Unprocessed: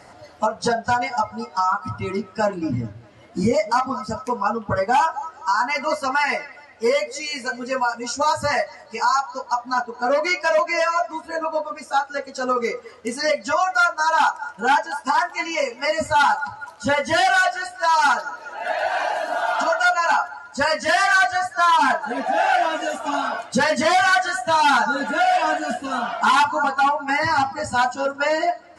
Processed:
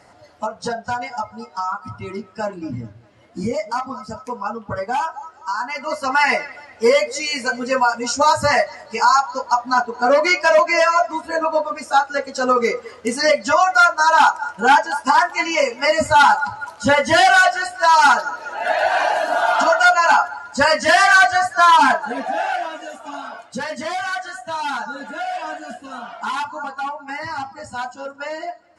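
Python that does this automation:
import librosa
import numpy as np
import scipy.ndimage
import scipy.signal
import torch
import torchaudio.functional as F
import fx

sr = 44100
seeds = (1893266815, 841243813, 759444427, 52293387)

y = fx.gain(x, sr, db=fx.line((5.82, -4.0), (6.23, 5.0), (21.78, 5.0), (22.82, -8.0)))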